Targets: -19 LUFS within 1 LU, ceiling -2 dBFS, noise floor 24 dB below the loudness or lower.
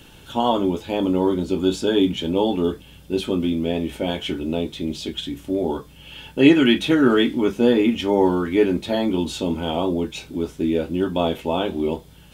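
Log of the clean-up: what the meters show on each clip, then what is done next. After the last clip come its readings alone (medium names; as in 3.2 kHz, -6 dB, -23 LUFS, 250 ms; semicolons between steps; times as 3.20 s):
loudness -21.5 LUFS; peak level -2.5 dBFS; loudness target -19.0 LUFS
-> trim +2.5 dB; peak limiter -2 dBFS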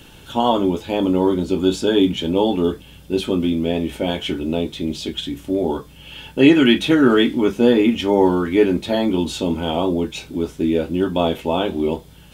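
loudness -19.0 LUFS; peak level -2.0 dBFS; noise floor -44 dBFS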